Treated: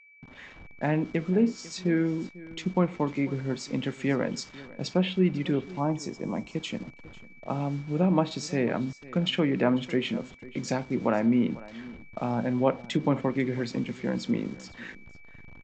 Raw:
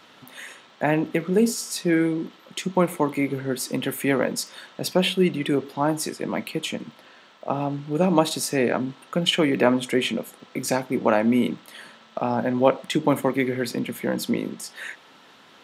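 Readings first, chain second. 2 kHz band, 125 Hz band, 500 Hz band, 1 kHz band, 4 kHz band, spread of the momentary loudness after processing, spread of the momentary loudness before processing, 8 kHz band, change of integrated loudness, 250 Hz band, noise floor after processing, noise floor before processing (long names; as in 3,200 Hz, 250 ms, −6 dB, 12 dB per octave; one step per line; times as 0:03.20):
−7.0 dB, 0.0 dB, −6.0 dB, −7.0 dB, −8.0 dB, 14 LU, 14 LU, −12.0 dB, −4.5 dB, −3.0 dB, −49 dBFS, −52 dBFS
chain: hold until the input has moved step −39 dBFS
low-pass that shuts in the quiet parts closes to 2,700 Hz, open at −20.5 dBFS
Butterworth low-pass 7,800 Hz 96 dB per octave
gain on a spectral selection 0:05.80–0:06.54, 1,200–5,000 Hz −8 dB
bass and treble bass +8 dB, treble +2 dB
steady tone 2,300 Hz −46 dBFS
treble cut that deepens with the level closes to 2,700 Hz, closed at −13.5 dBFS
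single-tap delay 497 ms −19.5 dB
level −7 dB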